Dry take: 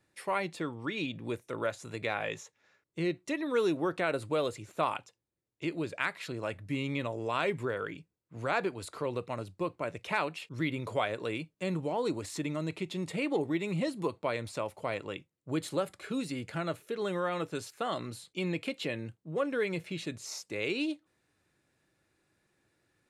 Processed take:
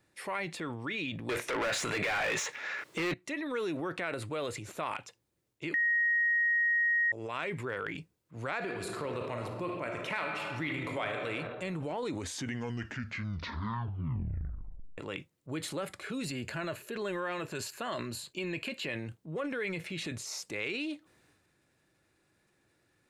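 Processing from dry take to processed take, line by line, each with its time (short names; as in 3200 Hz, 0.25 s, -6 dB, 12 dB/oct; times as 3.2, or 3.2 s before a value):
1.29–3.14 overdrive pedal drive 34 dB, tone 3400 Hz, clips at -16.5 dBFS
5.74–7.12 bleep 1880 Hz -16.5 dBFS
8.57–11.28 reverb throw, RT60 1.6 s, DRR 3.5 dB
11.98 tape stop 3.00 s
16.25–18.88 ripple EQ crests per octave 1.4, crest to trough 7 dB
whole clip: dynamic EQ 2000 Hz, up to +7 dB, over -49 dBFS, Q 1.2; compressor 3:1, threshold -36 dBFS; transient shaper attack -3 dB, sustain +7 dB; gain +2 dB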